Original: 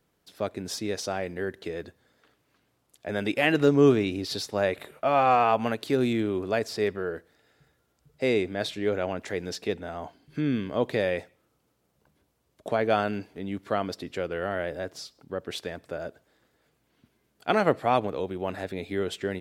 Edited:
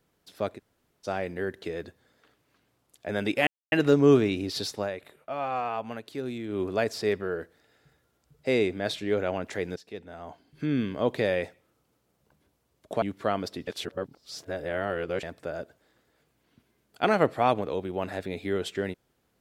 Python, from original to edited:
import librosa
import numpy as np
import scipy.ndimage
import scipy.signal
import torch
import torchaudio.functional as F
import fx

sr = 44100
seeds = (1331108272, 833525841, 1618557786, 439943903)

y = fx.edit(x, sr, fx.room_tone_fill(start_s=0.57, length_s=0.49, crossfade_s=0.06),
    fx.insert_silence(at_s=3.47, length_s=0.25),
    fx.fade_down_up(start_s=4.52, length_s=1.83, db=-9.5, fade_s=0.13),
    fx.fade_in_from(start_s=9.51, length_s=1.03, floor_db=-17.5),
    fx.cut(start_s=12.77, length_s=0.71),
    fx.reverse_span(start_s=14.13, length_s=1.56), tone=tone)